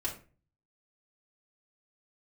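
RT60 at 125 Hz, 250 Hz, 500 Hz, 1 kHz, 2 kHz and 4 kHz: 0.75, 0.50, 0.40, 0.35, 0.35, 0.25 s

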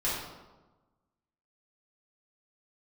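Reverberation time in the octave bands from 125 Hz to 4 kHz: 1.4, 1.4, 1.2, 1.2, 0.80, 0.75 s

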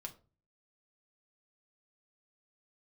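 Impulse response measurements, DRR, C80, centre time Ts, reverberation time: 1.5 dB, 21.0 dB, 7 ms, 0.35 s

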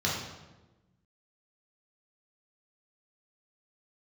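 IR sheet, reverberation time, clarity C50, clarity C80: 1.1 s, 2.0 dB, 4.5 dB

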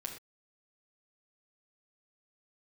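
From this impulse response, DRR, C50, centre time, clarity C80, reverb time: -0.5 dB, 7.0 dB, 21 ms, 10.5 dB, not exponential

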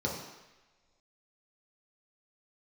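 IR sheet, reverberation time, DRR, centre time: not exponential, -3.5 dB, 48 ms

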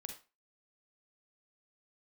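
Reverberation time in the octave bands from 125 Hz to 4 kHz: 0.25, 0.30, 0.30, 0.30, 0.30, 0.25 s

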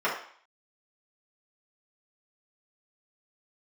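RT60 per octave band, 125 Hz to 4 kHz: 0.25, 0.45, 0.50, 0.55, 0.55, 0.55 s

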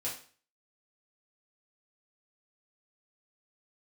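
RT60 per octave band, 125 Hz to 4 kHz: 0.45, 0.45, 0.40, 0.40, 0.40, 0.40 s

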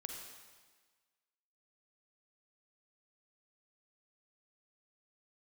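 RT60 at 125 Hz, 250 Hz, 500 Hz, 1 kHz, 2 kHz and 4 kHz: 1.3, 1.4, 1.4, 1.5, 1.4, 1.4 s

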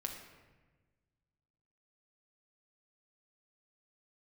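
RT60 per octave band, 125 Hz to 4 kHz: 2.2, 1.7, 1.4, 1.2, 1.2, 0.85 s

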